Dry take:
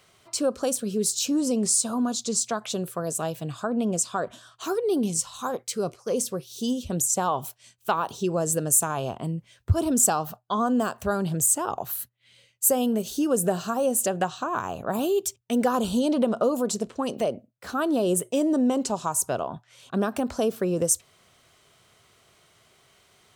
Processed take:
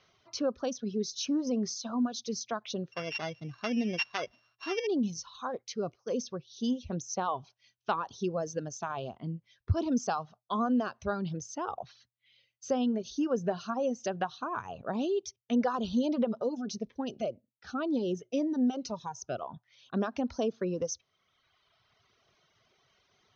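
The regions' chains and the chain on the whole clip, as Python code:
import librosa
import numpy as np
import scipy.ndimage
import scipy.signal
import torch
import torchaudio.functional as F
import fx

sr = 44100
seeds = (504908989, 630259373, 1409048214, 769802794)

y = fx.chain(x, sr, fx.sample_sort(block=16),
    fx.dynamic_eq(hz=3300.0, q=1.2, threshold_db=-42.0, ratio=4.0, max_db=3), at=(2.92, 4.87))
y = fx.chain(y, sr, fx.peak_eq(hz=1100.0, db=-7.0, octaves=0.2),
    fx.notch_cascade(direction='falling', hz=1.9), at=(16.28, 19.42))
y = fx.dereverb_blind(y, sr, rt60_s=1.5)
y = scipy.signal.sosfilt(scipy.signal.cheby1(8, 1.0, 6300.0, 'lowpass', fs=sr, output='sos'), y)
y = fx.dynamic_eq(y, sr, hz=240.0, q=2.8, threshold_db=-39.0, ratio=4.0, max_db=4)
y = y * librosa.db_to_amplitude(-5.5)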